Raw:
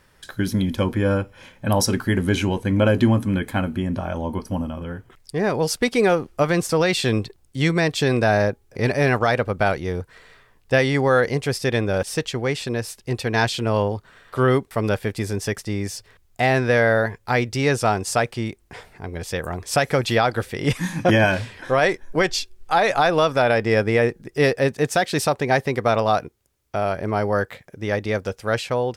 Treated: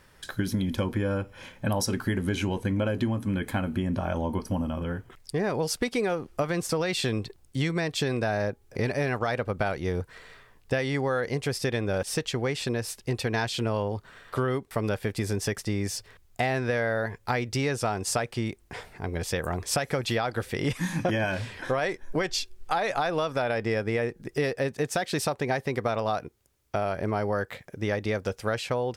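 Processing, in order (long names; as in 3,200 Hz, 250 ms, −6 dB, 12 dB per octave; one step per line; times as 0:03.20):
downward compressor, threshold −24 dBFS, peak gain reduction 11.5 dB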